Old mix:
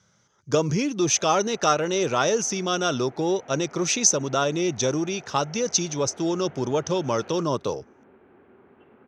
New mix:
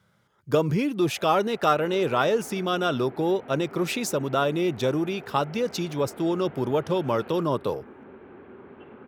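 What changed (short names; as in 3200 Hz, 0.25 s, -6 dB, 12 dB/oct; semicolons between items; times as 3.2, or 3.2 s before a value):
speech: remove synth low-pass 6100 Hz, resonance Q 13; second sound +8.5 dB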